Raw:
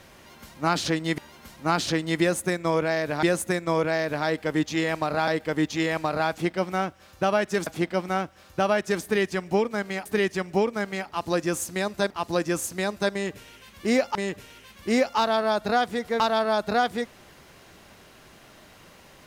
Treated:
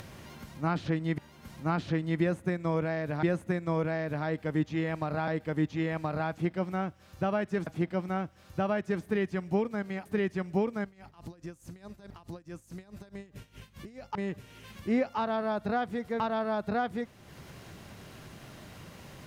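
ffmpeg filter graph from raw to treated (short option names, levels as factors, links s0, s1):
-filter_complex "[0:a]asettb=1/sr,asplit=3[s0][s1][s2];[s0]atrim=end=10.844[s3];[s1]atrim=start=10.84:end=14.13,asetpts=PTS-STARTPTS,afade=t=in:d=0.004:c=qsin,afade=t=out:st=3.286:d=0.004:c=qsin,acompressor=threshold=0.0178:ratio=3:attack=3.2:release=140:knee=1:detection=peak,aeval=exprs='val(0)+0.00251*(sin(2*PI*50*n/s)+sin(2*PI*2*50*n/s)/2+sin(2*PI*3*50*n/s)/3+sin(2*PI*4*50*n/s)/4+sin(2*PI*5*50*n/s)/5)':c=same,aeval=exprs='val(0)*pow(10,-20*(0.5-0.5*cos(2*PI*4.7*n/s))/20)':c=same[s4];[s2]atrim=start=14.126[s5];[s3][s4]acrossfade=d=0.004:c1=hsin:c2=qsin[s6];[s6][s5]acrossfade=d=0.004:c1=qsin:c2=hsin,acrossover=split=3000[s7][s8];[s8]acompressor=threshold=0.00316:ratio=4:attack=1:release=60[s9];[s7][s9]amix=inputs=2:normalize=0,equalizer=f=120:t=o:w=1.9:g=11,acompressor=mode=upward:threshold=0.0316:ratio=2.5,volume=0.376"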